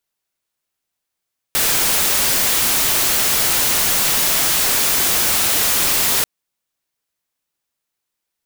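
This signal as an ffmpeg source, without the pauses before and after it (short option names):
-f lavfi -i "anoisesrc=c=white:a=0.259:d=4.69:r=44100:seed=1"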